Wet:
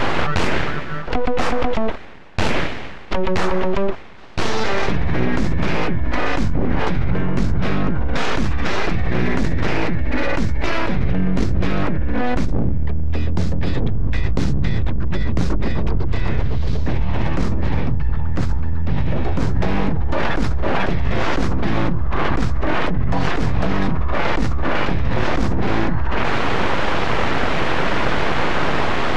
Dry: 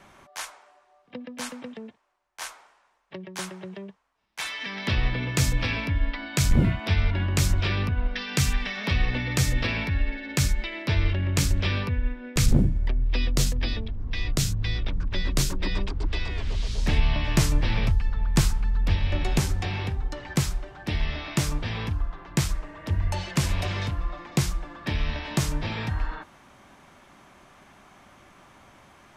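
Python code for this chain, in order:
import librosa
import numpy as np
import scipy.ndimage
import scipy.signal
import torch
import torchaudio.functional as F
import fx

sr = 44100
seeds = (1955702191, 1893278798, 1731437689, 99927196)

y = fx.dead_time(x, sr, dead_ms=0.063)
y = fx.dynamic_eq(y, sr, hz=2900.0, q=1.6, threshold_db=-48.0, ratio=4.0, max_db=-6)
y = np.abs(y)
y = fx.spacing_loss(y, sr, db_at_10k=29)
y = fx.env_flatten(y, sr, amount_pct=100)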